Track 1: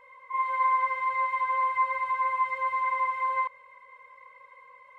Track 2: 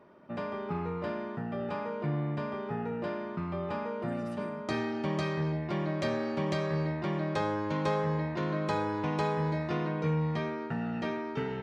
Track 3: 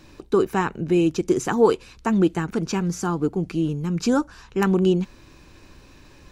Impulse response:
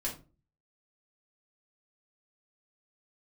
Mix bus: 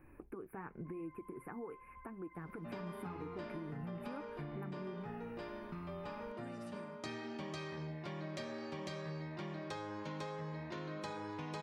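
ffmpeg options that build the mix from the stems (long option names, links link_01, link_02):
-filter_complex "[0:a]asoftclip=type=tanh:threshold=-30.5dB,adelay=550,volume=-19dB[link_01];[1:a]highshelf=frequency=3000:gain=9.5,adelay=2350,volume=-6dB[link_02];[2:a]acompressor=threshold=-26dB:ratio=6,volume=-7.5dB[link_03];[link_01][link_03]amix=inputs=2:normalize=0,asuperstop=centerf=5000:order=12:qfactor=0.7,alimiter=level_in=7.5dB:limit=-24dB:level=0:latency=1:release=308,volume=-7.5dB,volume=0dB[link_04];[link_02][link_04]amix=inputs=2:normalize=0,flanger=delay=2.4:depth=4.9:regen=-61:speed=0.92:shape=sinusoidal,acompressor=threshold=-40dB:ratio=6"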